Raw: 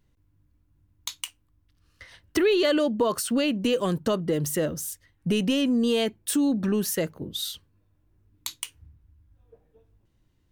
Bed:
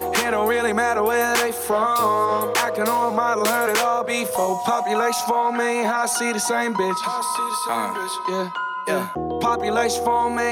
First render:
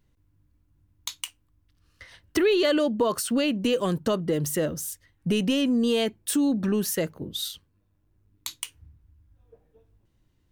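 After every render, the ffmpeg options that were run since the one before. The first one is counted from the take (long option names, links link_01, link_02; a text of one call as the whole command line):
ffmpeg -i in.wav -filter_complex "[0:a]asettb=1/sr,asplit=3[link_01][link_02][link_03];[link_01]atrim=end=7.484[link_04];[link_02]atrim=start=7.48:end=8.47,asetpts=PTS-STARTPTS,afade=type=in:duration=0.004:curve=qsin,afade=type=out:start_time=0.986:duration=0.004:curve=qsin,tremolo=f=100:d=0.462[link_05];[link_03]atrim=start=8.466[link_06];[link_04][link_05]acrossfade=duration=0.004:curve1=hsin:curve2=qsin[link_07];[link_07][link_06]acrossfade=duration=0.004:curve1=qsin:curve2=hsin" out.wav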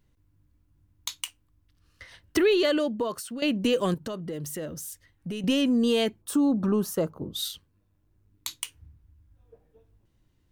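ffmpeg -i in.wav -filter_complex "[0:a]asettb=1/sr,asplit=3[link_01][link_02][link_03];[link_01]atrim=end=3.944[link_04];[link_02]atrim=start=3.94:end=5.44,asetpts=PTS-STARTPTS,afade=type=in:duration=0.004:curve=qsin,afade=type=out:start_time=1.496:duration=0.004:curve=qsin,acompressor=threshold=-38dB:ratio=2:attack=3.2:release=140:knee=1:detection=peak[link_05];[link_03]atrim=start=5.436[link_06];[link_04][link_05]acrossfade=duration=0.004:curve1=hsin:curve2=qsin[link_07];[link_07][link_06]acrossfade=duration=0.004:curve1=qsin:curve2=hsin,asplit=3[link_08][link_09][link_10];[link_08]afade=type=out:start_time=6.21:duration=0.02[link_11];[link_09]highshelf=frequency=1500:width_type=q:width=3:gain=-7,afade=type=in:start_time=6.21:duration=0.02,afade=type=out:start_time=7.35:duration=0.02[link_12];[link_10]afade=type=in:start_time=7.35:duration=0.02[link_13];[link_11][link_12][link_13]amix=inputs=3:normalize=0,asplit=2[link_14][link_15];[link_14]atrim=end=3.42,asetpts=PTS-STARTPTS,afade=type=out:start_time=2.5:duration=0.92:silence=0.199526[link_16];[link_15]atrim=start=3.42,asetpts=PTS-STARTPTS,afade=type=in:duration=0.004:curve=hsin:silence=0.199526[link_17];[link_16][link_17]concat=n=2:v=0:a=1" out.wav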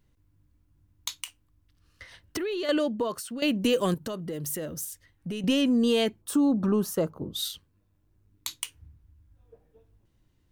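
ffmpeg -i in.wav -filter_complex "[0:a]asettb=1/sr,asplit=3[link_01][link_02][link_03];[link_01]atrim=end=1.094[link_04];[link_02]atrim=start=1.09:end=2.69,asetpts=PTS-STARTPTS,afade=type=in:duration=0.004:curve=qsin,afade=type=out:start_time=1.596:duration=0.004:curve=qsin,acompressor=threshold=-28dB:ratio=6:attack=3.2:release=140:knee=1:detection=peak[link_05];[link_03]atrim=start=2.686[link_06];[link_04][link_05]acrossfade=duration=0.004:curve1=hsin:curve2=qsin[link_07];[link_07][link_06]acrossfade=duration=0.004:curve1=qsin:curve2=hsin,asettb=1/sr,asplit=3[link_08][link_09][link_10];[link_08]atrim=end=3.414[link_11];[link_09]atrim=start=3.41:end=4.85,asetpts=PTS-STARTPTS,afade=type=in:duration=0.004:curve=qsin,afade=type=out:start_time=1.436:duration=0.004:curve=qsin,equalizer=frequency=15000:width=0.47:gain=7.5[link_12];[link_10]atrim=start=4.846[link_13];[link_11][link_12]acrossfade=duration=0.004:curve1=hsin:curve2=qsin[link_14];[link_14][link_13]acrossfade=duration=0.004:curve1=qsin:curve2=hsin" out.wav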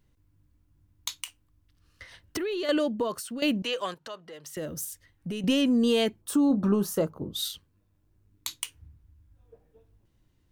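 ffmpeg -i in.wav -filter_complex "[0:a]asettb=1/sr,asplit=3[link_01][link_02][link_03];[link_01]atrim=end=3.624[link_04];[link_02]atrim=start=3.62:end=4.57,asetpts=PTS-STARTPTS,afade=type=in:duration=0.004:curve=qsin,afade=type=out:start_time=0.946:duration=0.004:curve=qsin,acrossover=split=580 6200:gain=0.1 1 0.141[link_05][link_06][link_07];[link_05][link_06][link_07]amix=inputs=3:normalize=0[link_08];[link_03]atrim=start=4.566[link_09];[link_04][link_08]acrossfade=duration=0.004:curve1=hsin:curve2=qsin[link_10];[link_10][link_09]acrossfade=duration=0.004:curve1=qsin:curve2=hsin,asettb=1/sr,asplit=3[link_11][link_12][link_13];[link_11]atrim=end=6.484[link_14];[link_12]atrim=start=6.48:end=7.03,asetpts=PTS-STARTPTS,afade=type=in:duration=0.004:curve=qsin,afade=type=out:start_time=0.546:duration=0.004:curve=qsin,asplit=2[link_15][link_16];[link_16]adelay=25,volume=-10dB[link_17];[link_15][link_17]amix=inputs=2:normalize=0,atrim=end_sample=24255[link_18];[link_13]atrim=start=7.026[link_19];[link_14][link_18]acrossfade=duration=0.004:curve1=hsin:curve2=qsin[link_20];[link_20][link_19]acrossfade=duration=0.004:curve1=qsin:curve2=hsin" out.wav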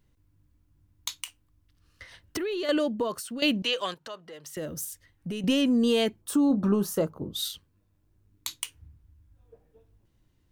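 ffmpeg -i in.wav -filter_complex "[0:a]asettb=1/sr,asplit=3[link_01][link_02][link_03];[link_01]atrim=end=3.394[link_04];[link_02]atrim=start=3.39:end=3.97,asetpts=PTS-STARTPTS,afade=type=in:duration=0.004:curve=qsin,afade=type=out:start_time=0.576:duration=0.004:curve=qsin,equalizer=frequency=3600:width_type=o:width=1.1:gain=6[link_05];[link_03]atrim=start=3.966[link_06];[link_04][link_05]acrossfade=duration=0.004:curve1=hsin:curve2=qsin[link_07];[link_07][link_06]acrossfade=duration=0.004:curve1=qsin:curve2=hsin" out.wav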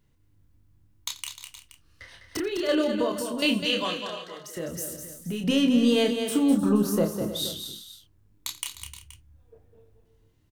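ffmpeg -i in.wav -filter_complex "[0:a]asplit=2[link_01][link_02];[link_02]adelay=29,volume=-5dB[link_03];[link_01][link_03]amix=inputs=2:normalize=0,asplit=2[link_04][link_05];[link_05]aecho=0:1:86|204|305|354|475:0.126|0.422|0.2|0.141|0.158[link_06];[link_04][link_06]amix=inputs=2:normalize=0" out.wav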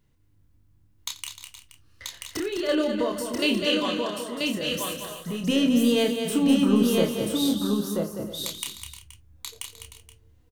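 ffmpeg -i in.wav -af "aecho=1:1:984:0.668" out.wav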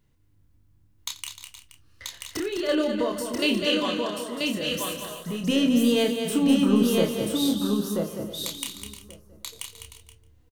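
ffmpeg -i in.wav -af "aecho=1:1:1131:0.0794" out.wav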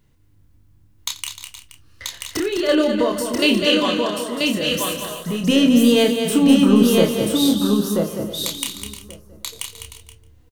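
ffmpeg -i in.wav -af "volume=7dB,alimiter=limit=-2dB:level=0:latency=1" out.wav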